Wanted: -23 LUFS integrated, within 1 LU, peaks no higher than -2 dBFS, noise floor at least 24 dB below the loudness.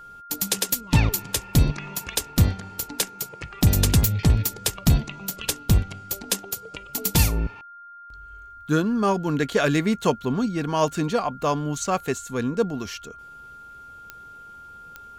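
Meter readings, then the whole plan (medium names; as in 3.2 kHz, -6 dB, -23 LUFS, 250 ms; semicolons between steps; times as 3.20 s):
clicks found 4; steady tone 1.4 kHz; tone level -41 dBFS; loudness -24.0 LUFS; peak level -6.5 dBFS; loudness target -23.0 LUFS
-> de-click; band-stop 1.4 kHz, Q 30; trim +1 dB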